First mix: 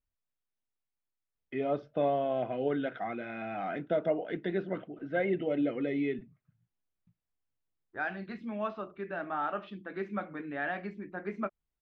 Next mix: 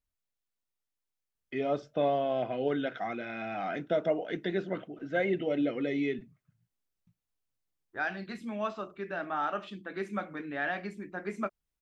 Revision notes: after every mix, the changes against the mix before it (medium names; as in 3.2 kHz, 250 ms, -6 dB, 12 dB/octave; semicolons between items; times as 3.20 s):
master: remove distance through air 270 m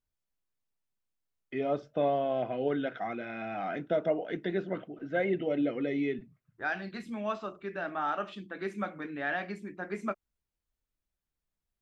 first voice: add treble shelf 4.3 kHz -9.5 dB; second voice: entry -1.35 s